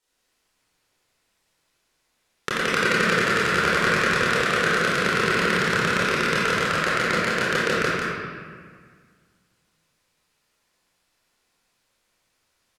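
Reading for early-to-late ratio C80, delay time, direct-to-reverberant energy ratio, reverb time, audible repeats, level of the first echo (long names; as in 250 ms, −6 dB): −3.5 dB, 173 ms, −10.5 dB, 1.8 s, 1, −1.5 dB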